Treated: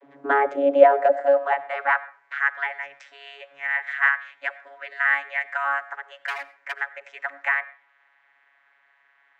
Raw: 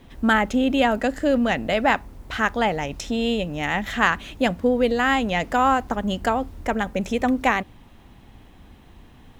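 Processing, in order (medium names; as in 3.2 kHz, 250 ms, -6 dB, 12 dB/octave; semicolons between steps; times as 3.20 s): high-order bell 1 kHz +12.5 dB 2.6 oct; vocoder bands 32, saw 140 Hz; 6.17–6.80 s: hard clipper -9 dBFS, distortion -24 dB; high-pass sweep 300 Hz -> 1.8 kHz, 0.34–2.23 s; on a send: reverberation RT60 0.45 s, pre-delay 45 ms, DRR 17 dB; on the sum: trim -11 dB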